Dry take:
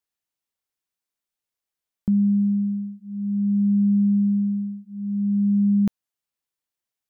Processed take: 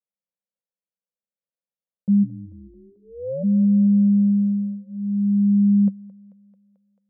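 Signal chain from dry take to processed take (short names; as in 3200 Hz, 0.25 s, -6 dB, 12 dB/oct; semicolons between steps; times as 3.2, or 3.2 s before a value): 2.22–3.42 ring modulator 75 Hz -> 380 Hz; double band-pass 320 Hz, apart 1.4 oct; thinning echo 0.22 s, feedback 76%, high-pass 260 Hz, level -18 dB; gain +4 dB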